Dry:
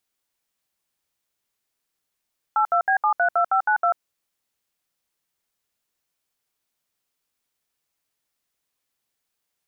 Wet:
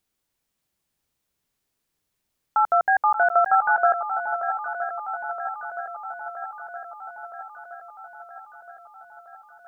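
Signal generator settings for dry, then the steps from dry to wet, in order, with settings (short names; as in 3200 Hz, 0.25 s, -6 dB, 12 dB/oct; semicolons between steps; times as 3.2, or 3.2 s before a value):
DTMF "82B732592", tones 91 ms, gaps 68 ms, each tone -19 dBFS
low shelf 340 Hz +10.5 dB; on a send: swung echo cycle 0.969 s, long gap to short 1.5:1, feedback 63%, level -10 dB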